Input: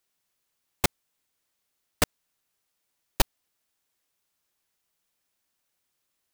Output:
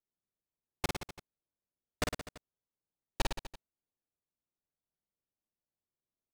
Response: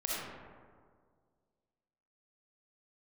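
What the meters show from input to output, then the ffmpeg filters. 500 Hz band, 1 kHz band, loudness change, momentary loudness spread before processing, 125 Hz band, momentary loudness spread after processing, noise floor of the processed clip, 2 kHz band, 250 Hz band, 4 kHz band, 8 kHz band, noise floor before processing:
-7.0 dB, -7.0 dB, -10.0 dB, 0 LU, -7.0 dB, 17 LU, under -85 dBFS, -7.0 dB, -7.0 dB, -8.0 dB, -11.5 dB, -79 dBFS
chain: -filter_complex "[0:a]adynamicsmooth=sensitivity=5.5:basefreq=680,asplit=2[s0][s1];[s1]aecho=0:1:50|107.5|173.6|249.7|337.1:0.631|0.398|0.251|0.158|0.1[s2];[s0][s2]amix=inputs=2:normalize=0,volume=0.355"

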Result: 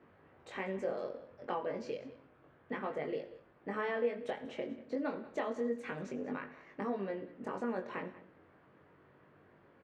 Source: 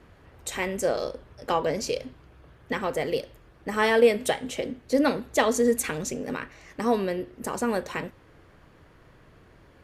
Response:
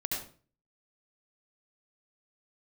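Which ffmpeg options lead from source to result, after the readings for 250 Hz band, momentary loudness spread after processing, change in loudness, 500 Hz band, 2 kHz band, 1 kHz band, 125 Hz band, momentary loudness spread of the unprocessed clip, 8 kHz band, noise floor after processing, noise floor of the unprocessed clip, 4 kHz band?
-11.5 dB, 12 LU, -13.0 dB, -12.5 dB, -13.0 dB, -12.0 dB, -12.0 dB, 14 LU, under -30 dB, -65 dBFS, -55 dBFS, -20.0 dB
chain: -filter_complex "[0:a]acompressor=threshold=0.0398:ratio=3,flanger=delay=20:depth=2.2:speed=0.3,highpass=160,lowpass=2100,aecho=1:1:189:0.126,asplit=2[s0][s1];[1:a]atrim=start_sample=2205,asetrate=39690,aresample=44100[s2];[s1][s2]afir=irnorm=-1:irlink=0,volume=0.1[s3];[s0][s3]amix=inputs=2:normalize=0,volume=0.631"

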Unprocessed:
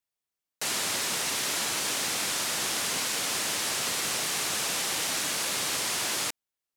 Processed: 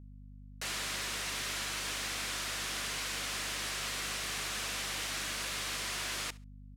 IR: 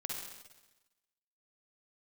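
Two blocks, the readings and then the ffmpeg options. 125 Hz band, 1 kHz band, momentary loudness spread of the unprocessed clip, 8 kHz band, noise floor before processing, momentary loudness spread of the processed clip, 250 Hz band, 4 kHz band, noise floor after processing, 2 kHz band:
-1.0 dB, -7.0 dB, 1 LU, -10.0 dB, under -85 dBFS, 3 LU, -7.5 dB, -7.0 dB, -51 dBFS, -5.0 dB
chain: -filter_complex "[0:a]highshelf=f=4300:g=-10,bandreject=f=860:w=12,acrossover=split=1200[s0][s1];[s0]alimiter=level_in=6.31:limit=0.0631:level=0:latency=1,volume=0.158[s2];[s2][s1]amix=inputs=2:normalize=0,asoftclip=type=tanh:threshold=0.0841,aeval=exprs='val(0)+0.00447*(sin(2*PI*50*n/s)+sin(2*PI*2*50*n/s)/2+sin(2*PI*3*50*n/s)/3+sin(2*PI*4*50*n/s)/4+sin(2*PI*5*50*n/s)/5)':c=same,aecho=1:1:68|136:0.0794|0.0183,volume=0.794" -ar 44100 -c:a libmp3lame -b:a 320k

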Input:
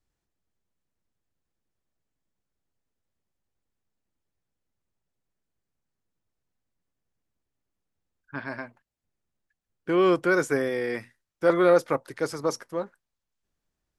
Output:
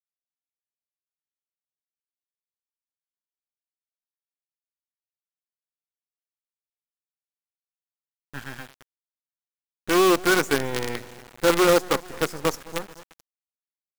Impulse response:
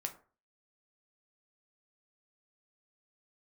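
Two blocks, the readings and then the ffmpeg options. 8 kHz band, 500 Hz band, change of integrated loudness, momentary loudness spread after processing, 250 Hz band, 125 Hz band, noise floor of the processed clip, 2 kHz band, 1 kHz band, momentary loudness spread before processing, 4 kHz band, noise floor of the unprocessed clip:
+11.5 dB, +0.5 dB, +2.5 dB, 20 LU, +2.0 dB, +2.5 dB, under -85 dBFS, +4.0 dB, +4.5 dB, 19 LU, +12.0 dB, -84 dBFS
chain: -filter_complex "[0:a]superequalizer=8b=0.398:15b=1.58,asplit=2[s0][s1];[s1]aeval=exprs='sgn(val(0))*max(abs(val(0))-0.0141,0)':c=same,volume=0.376[s2];[s0][s2]amix=inputs=2:normalize=0,aecho=1:1:219|438|657|876|1095:0.15|0.0778|0.0405|0.021|0.0109,acrusher=bits=4:dc=4:mix=0:aa=0.000001"

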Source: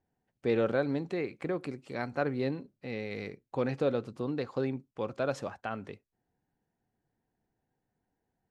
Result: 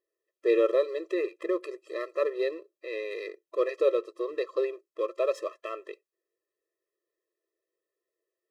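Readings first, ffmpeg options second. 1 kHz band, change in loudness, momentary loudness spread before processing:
-0.5 dB, +3.5 dB, 10 LU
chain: -filter_complex "[0:a]asplit=2[s0][s1];[s1]aeval=exprs='sgn(val(0))*max(abs(val(0))-0.00531,0)':c=same,volume=0.708[s2];[s0][s2]amix=inputs=2:normalize=0,bandreject=f=4300:w=17,afftfilt=real='re*eq(mod(floor(b*sr/1024/340),2),1)':imag='im*eq(mod(floor(b*sr/1024/340),2),1)':win_size=1024:overlap=0.75,volume=1.19"

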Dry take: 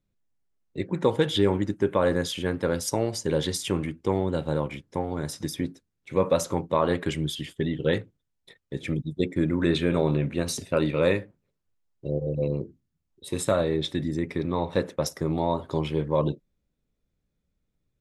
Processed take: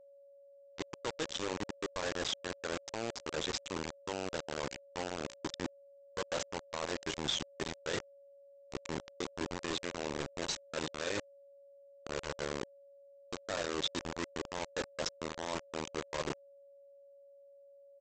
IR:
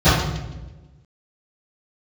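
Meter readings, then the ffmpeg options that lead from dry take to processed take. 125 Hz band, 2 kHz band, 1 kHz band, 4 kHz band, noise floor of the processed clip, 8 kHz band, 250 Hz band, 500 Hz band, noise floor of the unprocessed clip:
-20.0 dB, -5.5 dB, -9.5 dB, -4.0 dB, -59 dBFS, -6.5 dB, -16.0 dB, -14.0 dB, -79 dBFS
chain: -af "afftdn=nr=19:nf=-37,bass=f=250:g=-12,treble=f=4000:g=-10,areverse,acompressor=threshold=0.0141:ratio=10,areverse,aexciter=amount=3.1:drive=2.1:freq=3300,aresample=16000,acrusher=bits=5:mix=0:aa=0.000001,aresample=44100,aeval=exprs='val(0)+0.00141*sin(2*PI*560*n/s)':c=same,volume=1.12"

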